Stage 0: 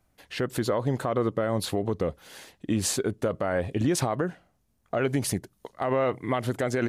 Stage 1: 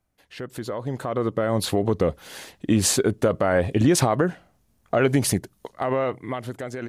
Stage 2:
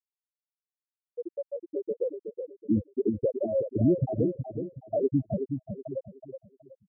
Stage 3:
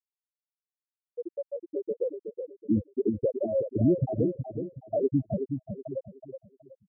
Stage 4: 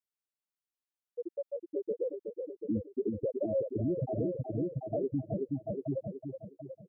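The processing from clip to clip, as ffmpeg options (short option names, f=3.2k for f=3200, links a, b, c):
-af "dynaudnorm=f=240:g=11:m=15dB,volume=-6.5dB"
-filter_complex "[0:a]afftfilt=real='re*gte(hypot(re,im),0.708)':imag='im*gte(hypot(re,im),0.708)':win_size=1024:overlap=0.75,asplit=2[a][b];[b]adelay=372,lowpass=f=1.1k:p=1,volume=-6.5dB,asplit=2[c][d];[d]adelay=372,lowpass=f=1.1k:p=1,volume=0.34,asplit=2[e][f];[f]adelay=372,lowpass=f=1.1k:p=1,volume=0.34,asplit=2[g][h];[h]adelay=372,lowpass=f=1.1k:p=1,volume=0.34[i];[c][e][g][i]amix=inputs=4:normalize=0[j];[a][j]amix=inputs=2:normalize=0,volume=-3.5dB"
-af anull
-af "aecho=1:1:738|1476|2214:0.398|0.0637|0.0102,alimiter=limit=-21.5dB:level=0:latency=1:release=105,volume=-2.5dB"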